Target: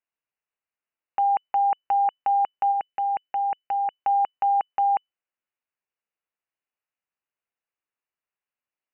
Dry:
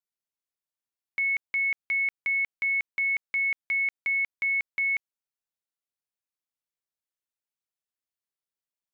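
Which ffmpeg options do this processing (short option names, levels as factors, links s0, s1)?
-filter_complex "[0:a]asplit=3[s0][s1][s2];[s0]afade=t=out:st=2.71:d=0.02[s3];[s1]equalizer=f=1900:w=3.6:g=-8,afade=t=in:st=2.71:d=0.02,afade=t=out:st=3.93:d=0.02[s4];[s2]afade=t=in:st=3.93:d=0.02[s5];[s3][s4][s5]amix=inputs=3:normalize=0,lowpass=f=2600:t=q:w=0.5098,lowpass=f=2600:t=q:w=0.6013,lowpass=f=2600:t=q:w=0.9,lowpass=f=2600:t=q:w=2.563,afreqshift=-3000,volume=1.88"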